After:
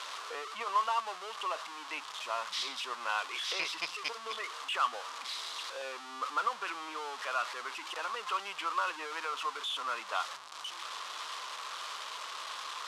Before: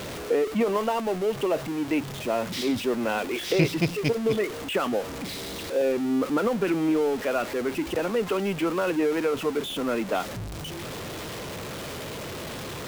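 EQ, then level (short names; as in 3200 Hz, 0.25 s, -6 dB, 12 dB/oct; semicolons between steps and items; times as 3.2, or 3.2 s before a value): resonant high-pass 1100 Hz, resonance Q 4.3; air absorption 70 m; band shelf 6200 Hz +9 dB 2.4 oct; -8.5 dB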